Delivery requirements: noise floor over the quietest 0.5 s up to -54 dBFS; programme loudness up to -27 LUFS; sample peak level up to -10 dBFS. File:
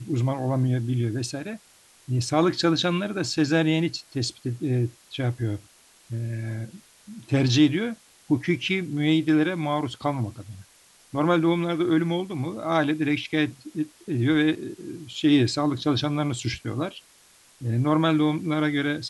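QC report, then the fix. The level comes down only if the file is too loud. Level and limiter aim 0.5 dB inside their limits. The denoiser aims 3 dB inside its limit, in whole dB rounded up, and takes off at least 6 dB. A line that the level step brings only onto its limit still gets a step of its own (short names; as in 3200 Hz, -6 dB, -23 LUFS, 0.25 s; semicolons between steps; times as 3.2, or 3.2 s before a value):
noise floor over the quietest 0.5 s -56 dBFS: OK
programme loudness -25.0 LUFS: fail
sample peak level -7.5 dBFS: fail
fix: gain -2.5 dB; limiter -10.5 dBFS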